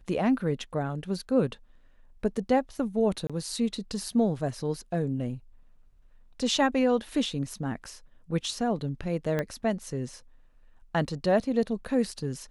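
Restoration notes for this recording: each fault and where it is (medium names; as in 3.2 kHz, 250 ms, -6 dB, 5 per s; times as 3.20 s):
3.27–3.30 s: dropout 26 ms
9.39 s: pop -16 dBFS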